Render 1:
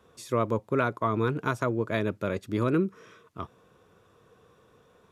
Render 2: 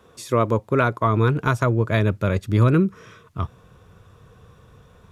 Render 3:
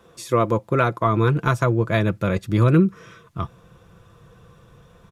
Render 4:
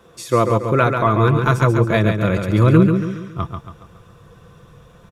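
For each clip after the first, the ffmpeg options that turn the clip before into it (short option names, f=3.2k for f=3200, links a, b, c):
-af "asubboost=boost=6.5:cutoff=130,volume=7dB"
-af "aecho=1:1:5.9:0.4"
-af "aecho=1:1:139|278|417|556|695:0.501|0.221|0.097|0.0427|0.0188,volume=3dB"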